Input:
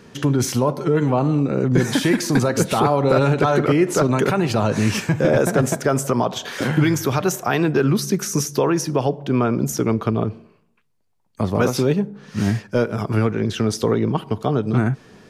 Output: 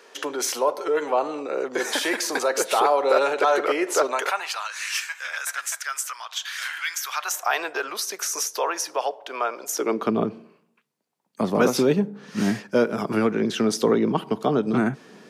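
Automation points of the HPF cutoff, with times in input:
HPF 24 dB/oct
4.04 s 440 Hz
4.72 s 1400 Hz
6.96 s 1400 Hz
7.59 s 590 Hz
9.65 s 590 Hz
10.14 s 180 Hz

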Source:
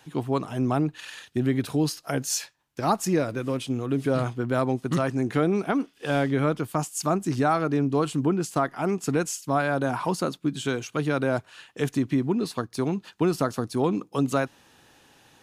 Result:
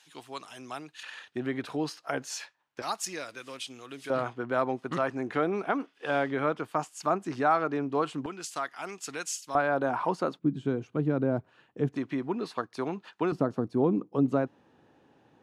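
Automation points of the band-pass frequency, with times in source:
band-pass, Q 0.58
5100 Hz
from 1.03 s 1200 Hz
from 2.82 s 4400 Hz
from 4.1 s 1100 Hz
from 8.26 s 3900 Hz
from 9.55 s 790 Hz
from 10.39 s 220 Hz
from 11.96 s 1100 Hz
from 13.32 s 300 Hz

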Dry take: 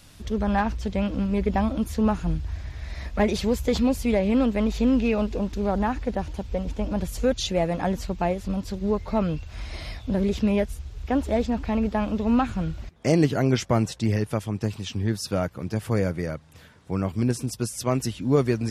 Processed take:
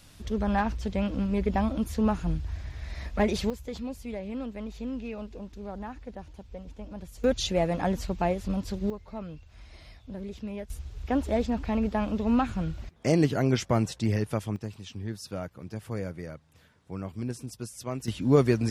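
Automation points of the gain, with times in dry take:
-3 dB
from 3.5 s -14 dB
from 7.24 s -2 dB
from 8.9 s -14.5 dB
from 10.7 s -3 dB
from 14.56 s -10 dB
from 18.08 s 0 dB

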